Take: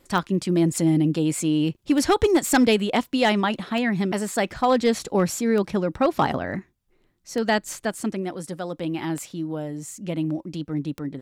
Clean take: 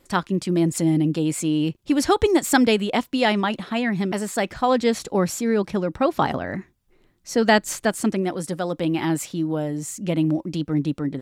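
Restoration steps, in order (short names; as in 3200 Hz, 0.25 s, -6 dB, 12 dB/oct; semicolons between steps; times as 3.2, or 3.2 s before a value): clip repair -11.5 dBFS; de-click; gain 0 dB, from 6.59 s +5 dB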